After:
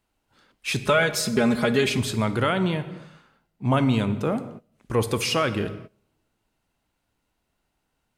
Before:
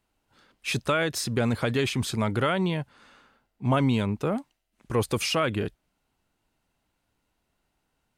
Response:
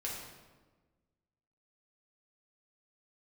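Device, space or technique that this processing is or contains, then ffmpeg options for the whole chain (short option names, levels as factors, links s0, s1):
keyed gated reverb: -filter_complex "[0:a]asettb=1/sr,asplit=3[s0][s1][s2];[s0]atrim=end=0.854[s3];[s1]atrim=start=0.85:end=1.98,asetpts=PTS-STARTPTS,afade=t=in:d=0.004:c=qsin,afade=t=out:st=1.126:d=0.004:c=qsin,aecho=1:1:4.8:0.84,atrim=end_sample=49833[s4];[s2]atrim=start=1.976[s5];[s3][s4]acrossfade=d=0.004:c1=hsin:c2=qsin[s6];[s6][s5]acrossfade=d=0.004:c1=qsin:c2=hsin,asplit=3[s7][s8][s9];[1:a]atrim=start_sample=2205[s10];[s8][s10]afir=irnorm=-1:irlink=0[s11];[s9]apad=whole_len=360388[s12];[s11][s12]sidechaingate=range=0.0794:threshold=0.00224:ratio=16:detection=peak,volume=0.376[s13];[s7][s13]amix=inputs=2:normalize=0"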